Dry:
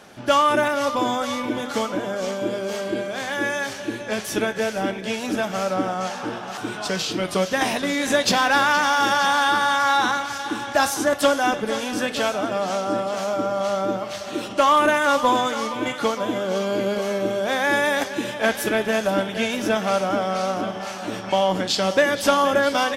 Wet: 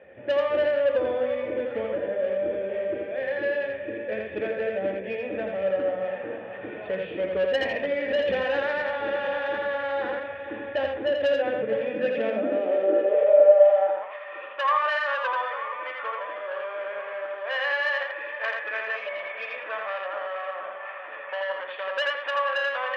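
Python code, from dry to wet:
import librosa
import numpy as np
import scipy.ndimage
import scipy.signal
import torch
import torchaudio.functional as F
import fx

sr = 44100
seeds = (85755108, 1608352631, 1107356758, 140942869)

p1 = fx.formant_cascade(x, sr, vowel='e')
p2 = 10.0 ** (-26.5 / 20.0) * np.tanh(p1 / 10.0 ** (-26.5 / 20.0))
p3 = fx.peak_eq(p2, sr, hz=3000.0, db=8.0, octaves=0.28)
p4 = fx.hum_notches(p3, sr, base_hz=60, count=5)
p5 = p4 + fx.echo_single(p4, sr, ms=83, db=-3.5, dry=0)
p6 = fx.spec_repair(p5, sr, seeds[0], start_s=18.99, length_s=0.52, low_hz=640.0, high_hz=2300.0, source='after')
p7 = fx.filter_sweep_highpass(p6, sr, from_hz=77.0, to_hz=1100.0, start_s=11.15, end_s=14.22, q=6.0)
y = p7 * 10.0 ** (6.5 / 20.0)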